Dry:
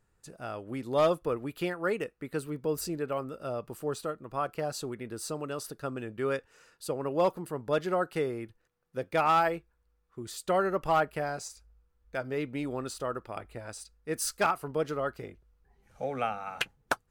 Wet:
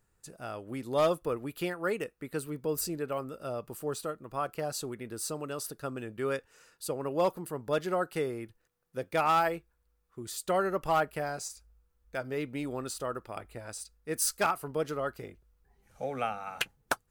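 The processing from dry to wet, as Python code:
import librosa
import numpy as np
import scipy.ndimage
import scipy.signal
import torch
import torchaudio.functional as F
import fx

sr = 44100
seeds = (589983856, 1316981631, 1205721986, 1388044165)

y = fx.high_shelf(x, sr, hz=7200.0, db=8.5)
y = y * librosa.db_to_amplitude(-1.5)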